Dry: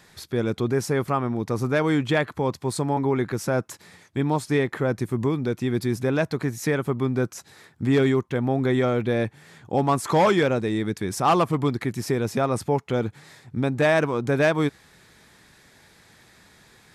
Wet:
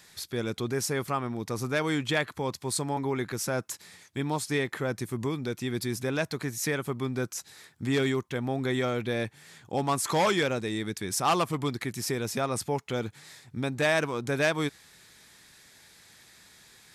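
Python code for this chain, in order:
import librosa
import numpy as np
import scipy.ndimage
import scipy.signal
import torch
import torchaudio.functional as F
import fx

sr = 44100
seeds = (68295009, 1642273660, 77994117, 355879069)

y = fx.high_shelf(x, sr, hz=2100.0, db=11.5)
y = F.gain(torch.from_numpy(y), -7.5).numpy()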